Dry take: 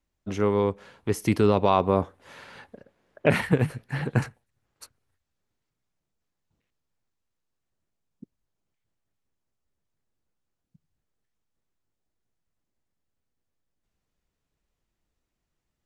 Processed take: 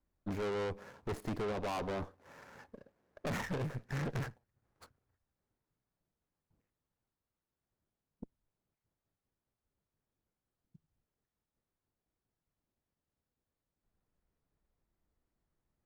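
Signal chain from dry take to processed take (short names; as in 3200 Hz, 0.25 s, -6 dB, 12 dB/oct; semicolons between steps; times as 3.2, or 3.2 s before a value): median filter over 15 samples; vocal rider within 4 dB 0.5 s; tube stage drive 34 dB, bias 0.7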